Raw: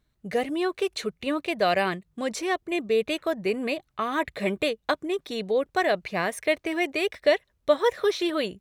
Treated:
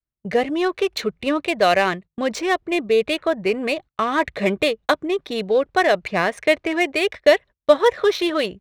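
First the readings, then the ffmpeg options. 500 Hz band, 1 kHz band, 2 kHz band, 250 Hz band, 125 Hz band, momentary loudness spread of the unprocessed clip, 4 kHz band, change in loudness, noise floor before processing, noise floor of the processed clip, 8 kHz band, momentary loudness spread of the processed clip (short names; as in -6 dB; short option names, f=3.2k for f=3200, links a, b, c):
+6.5 dB, +6.5 dB, +6.5 dB, +5.5 dB, +5.0 dB, 6 LU, +6.0 dB, +6.5 dB, -73 dBFS, under -85 dBFS, +4.0 dB, 7 LU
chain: -af "adynamicequalizer=threshold=0.0141:dfrequency=230:dqfactor=0.9:tfrequency=230:tqfactor=0.9:attack=5:release=100:ratio=0.375:range=2.5:mode=cutabove:tftype=bell,adynamicsmooth=sensitivity=6:basefreq=3.2k,agate=range=-26dB:threshold=-42dB:ratio=16:detection=peak,volume=7dB"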